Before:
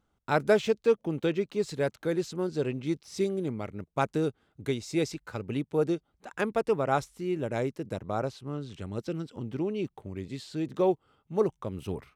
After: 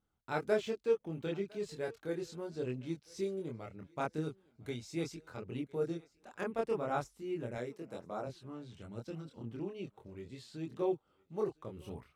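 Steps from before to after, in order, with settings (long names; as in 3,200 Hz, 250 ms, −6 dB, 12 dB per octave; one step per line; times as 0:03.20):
0:07.55–0:08.27: Bessel high-pass filter 210 Hz, order 2
feedback echo with a high-pass in the loop 1,006 ms, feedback 28%, high-pass 400 Hz, level −23 dB
multi-voice chorus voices 2, 0.37 Hz, delay 25 ms, depth 1.5 ms
level −6.5 dB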